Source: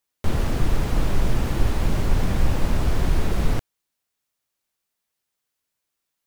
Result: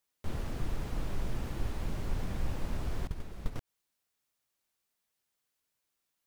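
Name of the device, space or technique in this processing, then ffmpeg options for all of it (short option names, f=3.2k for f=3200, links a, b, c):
de-esser from a sidechain: -filter_complex "[0:a]asettb=1/sr,asplit=3[a][b][c];[a]atrim=end=3.074[d];[b]atrim=start=3.07:end=3.56,asetpts=PTS-STARTPTS,afade=t=in:d=0.004:c=qsin,afade=t=out:st=0.486:d=0.004:c=qsin,agate=range=-20dB:threshold=-13dB:ratio=16:detection=peak[e];[c]atrim=start=3.556[f];[d][e]acrossfade=d=0.004:c1=hsin:c2=qsin[g];[g][f]acrossfade=d=0.004:c1=qsin:c2=hsin,asplit=2[h][i];[i]highpass=5k,apad=whole_len=276248[j];[h][j]sidechaincompress=threshold=-52dB:ratio=8:attack=2:release=85,volume=-2.5dB"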